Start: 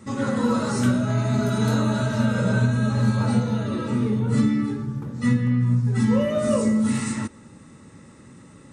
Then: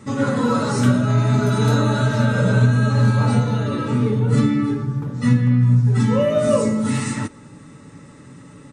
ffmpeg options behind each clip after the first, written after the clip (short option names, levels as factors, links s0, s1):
-af "highshelf=f=7300:g=-4.5,aecho=1:1:6.9:0.43,volume=1.58"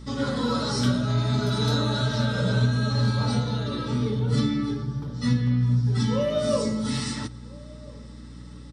-filter_complex "[0:a]aeval=exprs='val(0)+0.02*(sin(2*PI*60*n/s)+sin(2*PI*2*60*n/s)/2+sin(2*PI*3*60*n/s)/3+sin(2*PI*4*60*n/s)/4+sin(2*PI*5*60*n/s)/5)':c=same,superequalizer=13b=3.16:14b=3.98,asplit=2[s0][s1];[s1]adelay=1341,volume=0.0708,highshelf=f=4000:g=-30.2[s2];[s0][s2]amix=inputs=2:normalize=0,volume=0.447"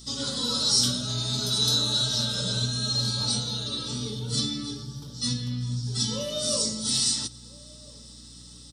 -af "aexciter=amount=8.1:drive=5.9:freq=3100,volume=0.376"